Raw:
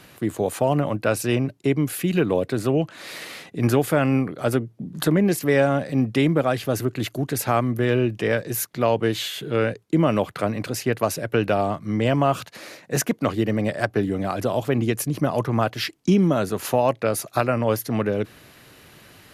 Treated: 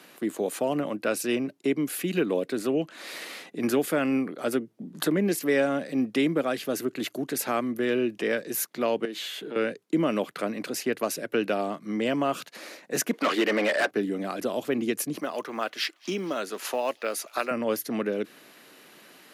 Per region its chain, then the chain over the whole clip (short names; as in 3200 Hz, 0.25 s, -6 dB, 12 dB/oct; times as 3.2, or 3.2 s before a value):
9.05–9.56 high shelf 4500 Hz -5.5 dB + compressor 3:1, threshold -28 dBFS + HPF 160 Hz 24 dB/oct
13.13–13.91 HPF 700 Hz 6 dB/oct + overdrive pedal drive 27 dB, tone 2000 Hz, clips at -8.5 dBFS
15.2–17.51 weighting filter A + companded quantiser 8-bit + thin delay 0.231 s, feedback 65%, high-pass 2000 Hz, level -22 dB
whole clip: HPF 210 Hz 24 dB/oct; dynamic EQ 840 Hz, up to -6 dB, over -36 dBFS, Q 1.2; gain -2.5 dB